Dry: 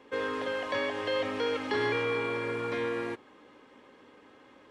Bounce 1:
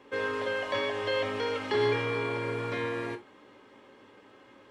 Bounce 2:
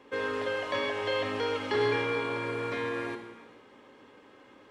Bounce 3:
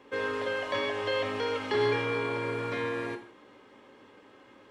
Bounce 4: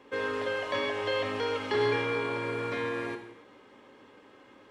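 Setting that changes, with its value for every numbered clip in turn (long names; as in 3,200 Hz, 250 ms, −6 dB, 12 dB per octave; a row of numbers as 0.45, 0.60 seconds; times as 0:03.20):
reverb whose tail is shaped and stops, gate: 100, 500, 200, 330 milliseconds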